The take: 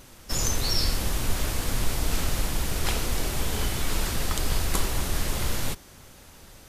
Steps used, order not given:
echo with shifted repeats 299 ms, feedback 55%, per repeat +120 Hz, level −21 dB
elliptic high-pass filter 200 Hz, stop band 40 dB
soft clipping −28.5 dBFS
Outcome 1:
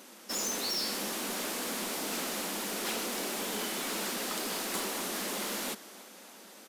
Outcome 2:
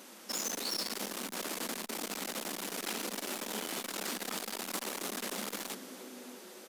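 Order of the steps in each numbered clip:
elliptic high-pass filter, then echo with shifted repeats, then soft clipping
echo with shifted repeats, then soft clipping, then elliptic high-pass filter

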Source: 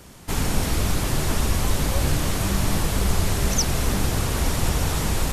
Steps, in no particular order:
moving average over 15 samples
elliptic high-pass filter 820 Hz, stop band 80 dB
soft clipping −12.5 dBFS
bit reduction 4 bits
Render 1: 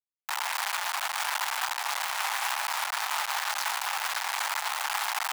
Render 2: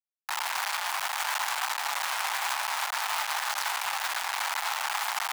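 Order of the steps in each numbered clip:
moving average, then soft clipping, then bit reduction, then elliptic high-pass filter
moving average, then bit reduction, then elliptic high-pass filter, then soft clipping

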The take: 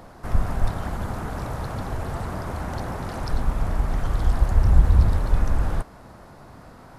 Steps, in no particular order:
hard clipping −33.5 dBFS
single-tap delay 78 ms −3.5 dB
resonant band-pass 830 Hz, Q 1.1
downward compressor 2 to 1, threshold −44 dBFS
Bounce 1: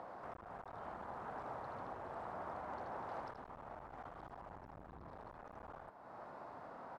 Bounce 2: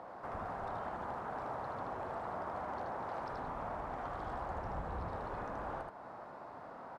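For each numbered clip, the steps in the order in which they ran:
single-tap delay, then downward compressor, then hard clipping, then resonant band-pass
resonant band-pass, then downward compressor, then hard clipping, then single-tap delay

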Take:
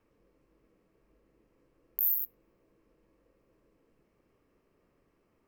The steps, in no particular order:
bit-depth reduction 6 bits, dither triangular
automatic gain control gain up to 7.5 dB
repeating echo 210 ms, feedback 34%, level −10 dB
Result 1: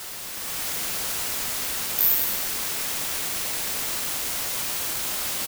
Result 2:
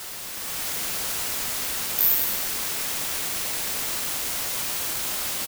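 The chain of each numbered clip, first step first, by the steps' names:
bit-depth reduction, then repeating echo, then automatic gain control
bit-depth reduction, then automatic gain control, then repeating echo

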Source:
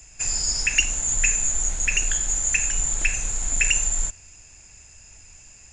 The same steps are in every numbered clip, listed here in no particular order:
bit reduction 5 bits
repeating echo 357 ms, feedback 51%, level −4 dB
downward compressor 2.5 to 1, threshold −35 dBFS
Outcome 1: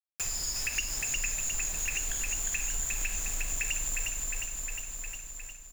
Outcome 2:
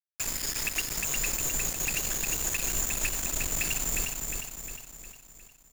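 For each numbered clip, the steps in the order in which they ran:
bit reduction, then repeating echo, then downward compressor
downward compressor, then bit reduction, then repeating echo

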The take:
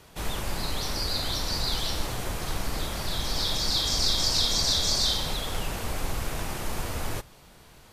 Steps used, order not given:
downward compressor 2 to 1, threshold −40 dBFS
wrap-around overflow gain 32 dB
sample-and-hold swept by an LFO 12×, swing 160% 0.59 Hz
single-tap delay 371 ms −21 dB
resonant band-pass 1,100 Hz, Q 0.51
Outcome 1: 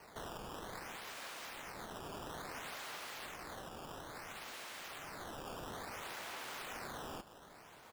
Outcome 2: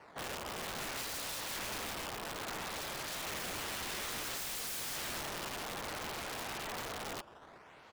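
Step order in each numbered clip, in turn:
wrap-around overflow, then downward compressor, then resonant band-pass, then sample-and-hold swept by an LFO, then single-tap delay
single-tap delay, then sample-and-hold swept by an LFO, then resonant band-pass, then wrap-around overflow, then downward compressor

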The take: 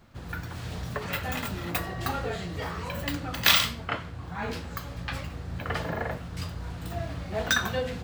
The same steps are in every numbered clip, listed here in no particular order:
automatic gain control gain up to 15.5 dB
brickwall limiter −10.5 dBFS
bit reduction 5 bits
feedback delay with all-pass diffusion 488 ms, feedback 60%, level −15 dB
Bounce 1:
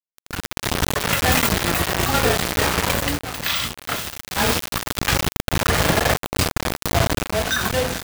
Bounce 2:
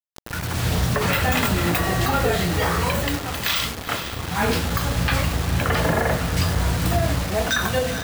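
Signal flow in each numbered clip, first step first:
feedback delay with all-pass diffusion, then bit reduction, then automatic gain control, then brickwall limiter
automatic gain control, then bit reduction, then feedback delay with all-pass diffusion, then brickwall limiter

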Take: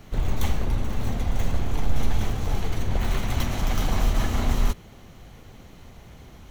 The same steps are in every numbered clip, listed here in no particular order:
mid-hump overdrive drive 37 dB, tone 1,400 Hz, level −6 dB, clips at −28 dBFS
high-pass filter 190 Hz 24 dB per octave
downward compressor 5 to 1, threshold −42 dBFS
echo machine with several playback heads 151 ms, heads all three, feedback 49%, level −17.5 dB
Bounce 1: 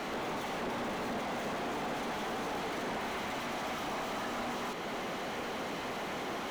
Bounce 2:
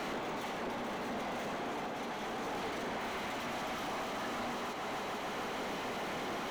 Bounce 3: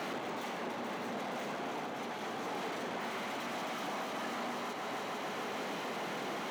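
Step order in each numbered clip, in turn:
high-pass filter, then downward compressor, then mid-hump overdrive, then echo machine with several playback heads
echo machine with several playback heads, then downward compressor, then high-pass filter, then mid-hump overdrive
echo machine with several playback heads, then downward compressor, then mid-hump overdrive, then high-pass filter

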